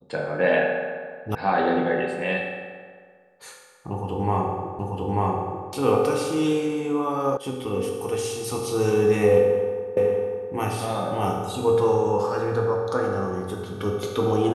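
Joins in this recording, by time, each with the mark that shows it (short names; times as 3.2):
1.35 sound cut off
4.79 repeat of the last 0.89 s
7.37 sound cut off
9.97 repeat of the last 0.55 s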